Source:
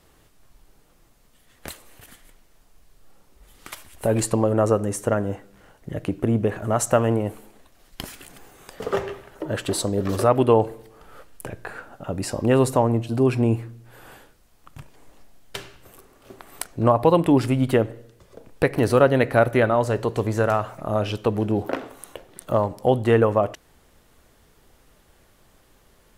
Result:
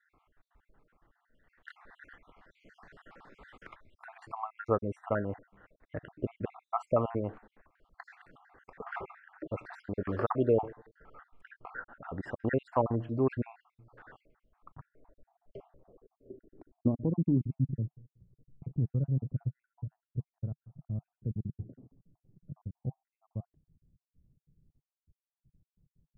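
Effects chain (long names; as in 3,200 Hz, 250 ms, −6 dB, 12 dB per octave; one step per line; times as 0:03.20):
time-frequency cells dropped at random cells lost 57%
low-pass filter sweep 1,600 Hz → 150 Hz, 0:14.26–0:17.74
0:01.70–0:04.30: multiband upward and downward compressor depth 100%
level −9 dB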